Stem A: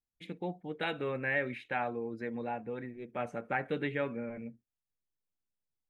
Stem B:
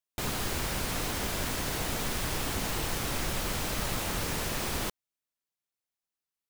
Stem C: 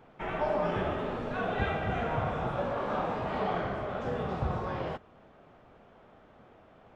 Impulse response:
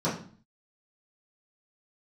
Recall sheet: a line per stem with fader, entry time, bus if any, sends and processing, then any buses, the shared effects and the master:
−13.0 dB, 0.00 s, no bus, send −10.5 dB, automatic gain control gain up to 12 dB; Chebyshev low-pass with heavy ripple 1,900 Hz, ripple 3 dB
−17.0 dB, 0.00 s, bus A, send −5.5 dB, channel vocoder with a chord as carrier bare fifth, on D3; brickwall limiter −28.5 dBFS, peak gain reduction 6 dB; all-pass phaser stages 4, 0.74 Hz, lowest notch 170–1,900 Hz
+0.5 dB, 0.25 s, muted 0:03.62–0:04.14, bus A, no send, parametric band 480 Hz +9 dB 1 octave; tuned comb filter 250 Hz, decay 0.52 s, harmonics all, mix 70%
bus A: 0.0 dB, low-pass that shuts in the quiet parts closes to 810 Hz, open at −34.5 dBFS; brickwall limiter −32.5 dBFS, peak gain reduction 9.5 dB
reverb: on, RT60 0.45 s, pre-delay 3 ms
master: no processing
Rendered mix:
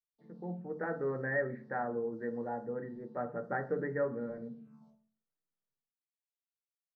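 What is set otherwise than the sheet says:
stem B −17.0 dB → −28.5 dB
stem C: muted
reverb return −9.0 dB

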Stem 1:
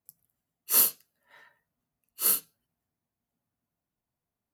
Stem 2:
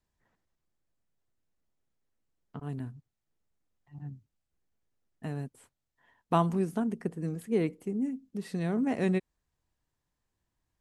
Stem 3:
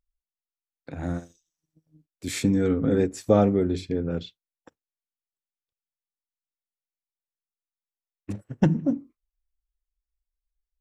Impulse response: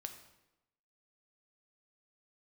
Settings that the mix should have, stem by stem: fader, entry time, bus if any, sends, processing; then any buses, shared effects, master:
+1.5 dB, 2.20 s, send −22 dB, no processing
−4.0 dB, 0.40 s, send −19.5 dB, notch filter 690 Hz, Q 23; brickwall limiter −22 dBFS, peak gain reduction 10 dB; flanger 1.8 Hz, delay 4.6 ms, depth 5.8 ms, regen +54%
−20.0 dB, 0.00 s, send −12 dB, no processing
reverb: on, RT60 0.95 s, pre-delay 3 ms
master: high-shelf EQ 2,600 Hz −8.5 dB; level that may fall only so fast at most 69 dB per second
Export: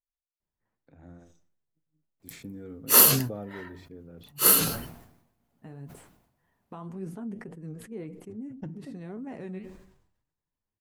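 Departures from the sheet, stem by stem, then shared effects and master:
stem 1 +1.5 dB → +13.0 dB
reverb return −8.5 dB

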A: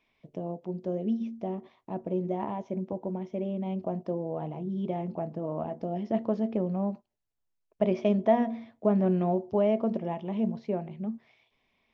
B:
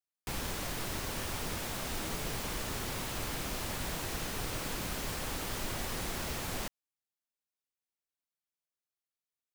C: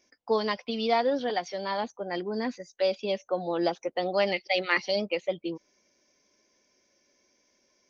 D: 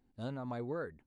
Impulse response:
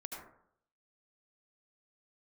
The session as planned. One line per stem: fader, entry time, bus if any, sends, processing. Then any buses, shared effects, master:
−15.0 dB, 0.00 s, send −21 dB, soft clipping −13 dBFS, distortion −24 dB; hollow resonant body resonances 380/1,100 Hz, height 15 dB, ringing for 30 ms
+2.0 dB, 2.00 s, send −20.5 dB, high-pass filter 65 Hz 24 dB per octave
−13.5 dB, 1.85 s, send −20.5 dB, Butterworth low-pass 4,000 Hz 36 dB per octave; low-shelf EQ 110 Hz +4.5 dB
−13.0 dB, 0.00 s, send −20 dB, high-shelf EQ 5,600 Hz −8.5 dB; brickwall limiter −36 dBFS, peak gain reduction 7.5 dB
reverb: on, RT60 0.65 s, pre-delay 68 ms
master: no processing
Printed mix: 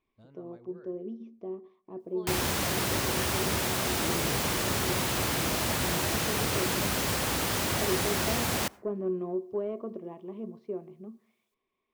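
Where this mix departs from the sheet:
stem B +2.0 dB → +8.5 dB
stem C −13.5 dB → −21.0 dB

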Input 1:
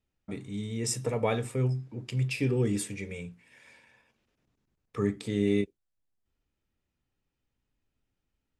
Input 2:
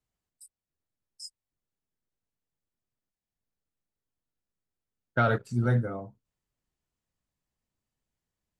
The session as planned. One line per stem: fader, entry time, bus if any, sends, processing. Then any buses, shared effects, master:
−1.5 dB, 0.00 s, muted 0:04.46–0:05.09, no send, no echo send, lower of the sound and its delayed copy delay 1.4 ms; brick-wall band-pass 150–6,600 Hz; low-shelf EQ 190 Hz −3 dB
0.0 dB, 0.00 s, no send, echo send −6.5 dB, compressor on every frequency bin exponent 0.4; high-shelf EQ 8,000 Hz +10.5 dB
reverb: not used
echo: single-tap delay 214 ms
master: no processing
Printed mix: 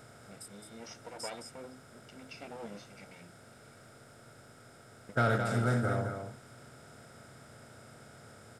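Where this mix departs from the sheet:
stem 1 −1.5 dB → −12.0 dB
stem 2 0.0 dB → −6.5 dB

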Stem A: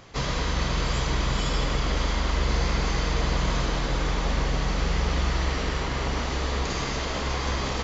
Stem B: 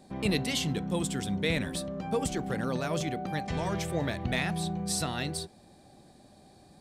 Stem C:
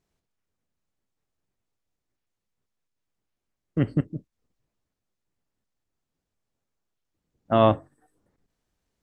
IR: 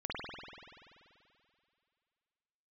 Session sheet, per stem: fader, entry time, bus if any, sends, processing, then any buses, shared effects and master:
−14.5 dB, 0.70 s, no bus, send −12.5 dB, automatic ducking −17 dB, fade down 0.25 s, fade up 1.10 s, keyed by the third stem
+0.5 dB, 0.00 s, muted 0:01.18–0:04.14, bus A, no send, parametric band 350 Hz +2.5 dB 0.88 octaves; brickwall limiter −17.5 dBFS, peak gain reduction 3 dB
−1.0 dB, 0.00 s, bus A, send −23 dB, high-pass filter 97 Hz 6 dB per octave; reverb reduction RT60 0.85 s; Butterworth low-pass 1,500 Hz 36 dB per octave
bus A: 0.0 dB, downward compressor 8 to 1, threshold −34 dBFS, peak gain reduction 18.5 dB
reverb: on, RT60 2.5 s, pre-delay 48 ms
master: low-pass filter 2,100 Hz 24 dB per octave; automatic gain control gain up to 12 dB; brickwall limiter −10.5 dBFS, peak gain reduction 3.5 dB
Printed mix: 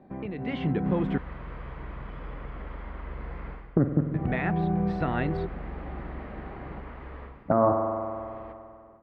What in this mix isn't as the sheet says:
stem A −14.5 dB → −26.0 dB
stem C −1.0 dB → +10.0 dB
reverb return −7.0 dB

